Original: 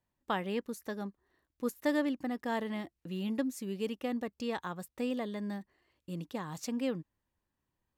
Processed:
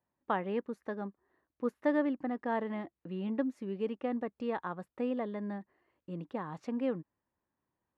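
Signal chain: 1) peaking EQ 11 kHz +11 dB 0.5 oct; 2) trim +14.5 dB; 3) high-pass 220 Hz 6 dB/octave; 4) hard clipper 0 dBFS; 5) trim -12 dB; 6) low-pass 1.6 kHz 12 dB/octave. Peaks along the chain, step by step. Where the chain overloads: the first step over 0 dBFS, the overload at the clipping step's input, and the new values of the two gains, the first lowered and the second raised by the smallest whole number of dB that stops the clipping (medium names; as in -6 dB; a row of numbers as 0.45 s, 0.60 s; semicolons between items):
-18.0 dBFS, -3.5 dBFS, -4.5 dBFS, -4.5 dBFS, -16.5 dBFS, -17.5 dBFS; nothing clips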